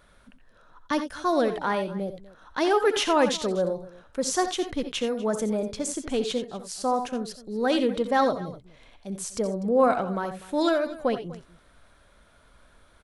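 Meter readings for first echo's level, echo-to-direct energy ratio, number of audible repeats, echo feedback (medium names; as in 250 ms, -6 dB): -13.5 dB, -9.0 dB, 2, no regular repeats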